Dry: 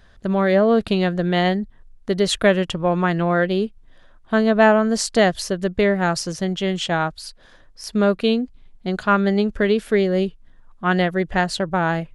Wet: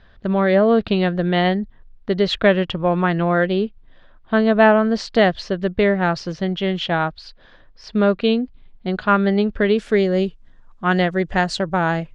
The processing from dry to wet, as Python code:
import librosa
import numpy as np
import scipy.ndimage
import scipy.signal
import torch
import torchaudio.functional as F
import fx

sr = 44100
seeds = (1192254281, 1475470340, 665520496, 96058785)

y = fx.lowpass(x, sr, hz=fx.steps((0.0, 4300.0), (9.78, 7500.0)), slope=24)
y = F.gain(torch.from_numpy(y), 1.0).numpy()